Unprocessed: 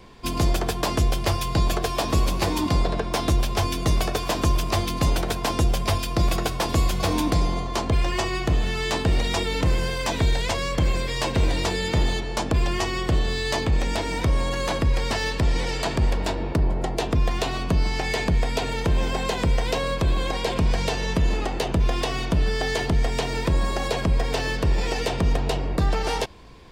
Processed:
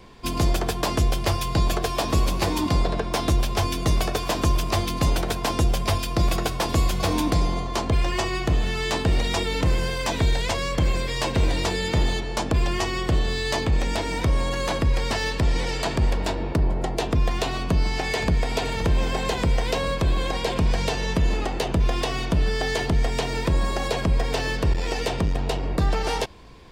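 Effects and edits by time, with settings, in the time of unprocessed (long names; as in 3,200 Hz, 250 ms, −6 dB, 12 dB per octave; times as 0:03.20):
0:17.45–0:18.38: delay throw 520 ms, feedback 70%, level −12 dB
0:24.73–0:25.63: saturating transformer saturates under 110 Hz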